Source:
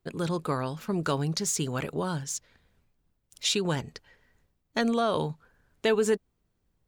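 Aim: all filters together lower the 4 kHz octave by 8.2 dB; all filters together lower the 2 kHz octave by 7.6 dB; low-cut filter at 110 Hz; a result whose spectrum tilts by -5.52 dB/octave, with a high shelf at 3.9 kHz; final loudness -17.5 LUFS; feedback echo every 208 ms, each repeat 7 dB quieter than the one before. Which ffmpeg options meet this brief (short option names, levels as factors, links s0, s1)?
-af "highpass=110,equalizer=f=2000:t=o:g=-8,highshelf=f=3900:g=-4.5,equalizer=f=4000:t=o:g=-5,aecho=1:1:208|416|624|832|1040:0.447|0.201|0.0905|0.0407|0.0183,volume=4.22"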